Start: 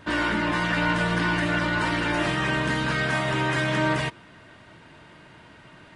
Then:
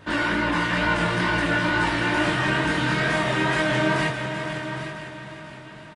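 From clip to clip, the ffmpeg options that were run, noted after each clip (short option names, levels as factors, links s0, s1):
-filter_complex "[0:a]asplit=2[s0][s1];[s1]aecho=0:1:495|990|1485|1980|2475|2970:0.316|0.174|0.0957|0.0526|0.0289|0.0159[s2];[s0][s2]amix=inputs=2:normalize=0,flanger=delay=19:depth=6.3:speed=2.2,asplit=2[s3][s4];[s4]aecho=0:1:156|815:0.237|0.299[s5];[s3][s5]amix=inputs=2:normalize=0,volume=1.58"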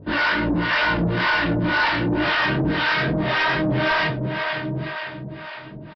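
-filter_complex "[0:a]acrossover=split=550[s0][s1];[s0]aeval=exprs='val(0)*(1-1/2+1/2*cos(2*PI*1.9*n/s))':c=same[s2];[s1]aeval=exprs='val(0)*(1-1/2-1/2*cos(2*PI*1.9*n/s))':c=same[s3];[s2][s3]amix=inputs=2:normalize=0,aresample=11025,asoftclip=type=tanh:threshold=0.0631,aresample=44100,volume=2.82"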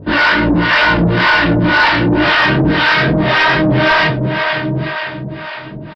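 -af "acontrast=31,volume=1.58"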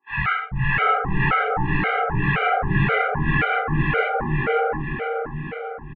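-filter_complex "[0:a]acrossover=split=300|1300[s0][s1][s2];[s0]adelay=100[s3];[s1]adelay=690[s4];[s3][s4][s2]amix=inputs=3:normalize=0,highpass=f=180:t=q:w=0.5412,highpass=f=180:t=q:w=1.307,lowpass=f=2700:t=q:w=0.5176,lowpass=f=2700:t=q:w=0.7071,lowpass=f=2700:t=q:w=1.932,afreqshift=-160,afftfilt=real='re*gt(sin(2*PI*1.9*pts/sr)*(1-2*mod(floor(b*sr/1024/400),2)),0)':imag='im*gt(sin(2*PI*1.9*pts/sr)*(1-2*mod(floor(b*sr/1024/400),2)),0)':win_size=1024:overlap=0.75,volume=0.668"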